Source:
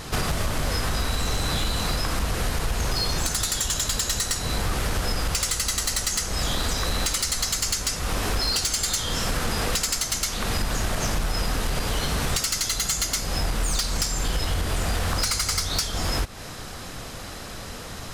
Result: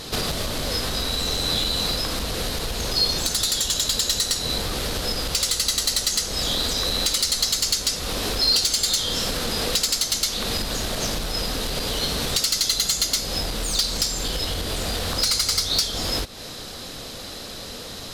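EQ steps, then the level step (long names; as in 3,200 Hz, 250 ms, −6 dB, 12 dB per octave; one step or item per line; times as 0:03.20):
graphic EQ with 10 bands 250 Hz +5 dB, 500 Hz +7 dB, 4,000 Hz +12 dB, 16,000 Hz +9 dB
−5.0 dB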